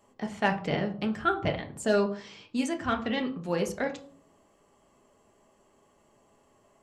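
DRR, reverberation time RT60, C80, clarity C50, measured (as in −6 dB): 3.5 dB, 0.50 s, 17.0 dB, 12.5 dB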